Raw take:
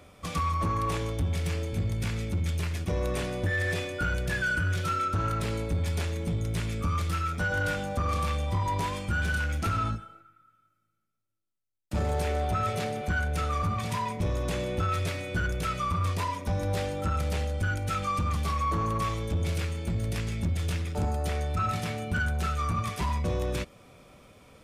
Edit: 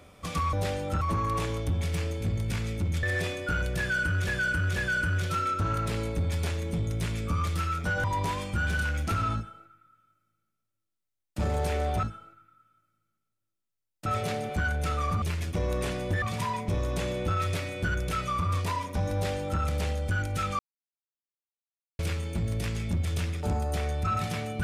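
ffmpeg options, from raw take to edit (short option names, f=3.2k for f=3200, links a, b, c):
-filter_complex "[0:a]asplit=13[a][b][c][d][e][f][g][h][i][j][k][l][m];[a]atrim=end=0.532[n];[b]atrim=start=16.648:end=17.132[o];[c]atrim=start=0.528:end=2.552[p];[d]atrim=start=3.548:end=4.792[q];[e]atrim=start=4.298:end=4.792[r];[f]atrim=start=4.298:end=7.582[s];[g]atrim=start=8.588:end=12.582[t];[h]atrim=start=9.908:end=11.942[u];[i]atrim=start=12.578:end=13.742[v];[j]atrim=start=2.548:end=3.552[w];[k]atrim=start=13.738:end=18.11,asetpts=PTS-STARTPTS,afade=t=out:st=4.368:d=0.004:c=hsin[x];[l]atrim=start=18.11:end=19.51,asetpts=PTS-STARTPTS,volume=0[y];[m]atrim=start=19.51,asetpts=PTS-STARTPTS,afade=t=in:d=0.004:c=hsin[z];[n][o]acrossfade=d=0.004:c1=hsin:c2=hsin[aa];[aa][p]acrossfade=d=0.004:c1=hsin:c2=hsin[ab];[ab][q]acrossfade=d=0.004:c1=hsin:c2=hsin[ac];[ac][r]acrossfade=d=0.004:c1=hsin:c2=hsin[ad];[ad][s]acrossfade=d=0.004:c1=hsin:c2=hsin[ae];[ae][t]acrossfade=d=0.004:c1=hsin:c2=hsin[af];[af][u]acrossfade=d=0.004:c1=hsin:c2=hsin[ag];[ag][v]acrossfade=d=0.004:c1=hsin:c2=hsin[ah];[ah][w]acrossfade=d=0.004:c1=hsin:c2=hsin[ai];[x][y][z]concat=n=3:v=0:a=1[aj];[ai][aj]acrossfade=d=0.004:c1=hsin:c2=hsin"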